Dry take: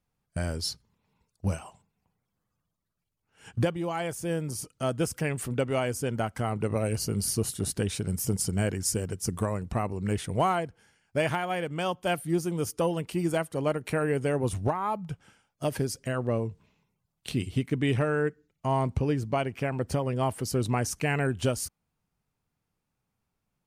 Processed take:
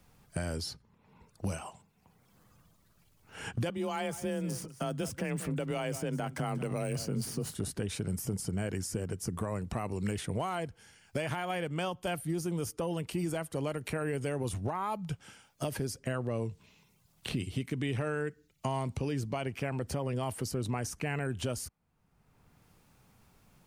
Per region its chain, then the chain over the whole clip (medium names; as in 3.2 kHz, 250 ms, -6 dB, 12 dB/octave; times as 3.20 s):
3.69–7.55 s: median filter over 3 samples + frequency shift +26 Hz + delay 185 ms -17.5 dB
whole clip: peak limiter -22.5 dBFS; three bands compressed up and down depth 70%; trim -3 dB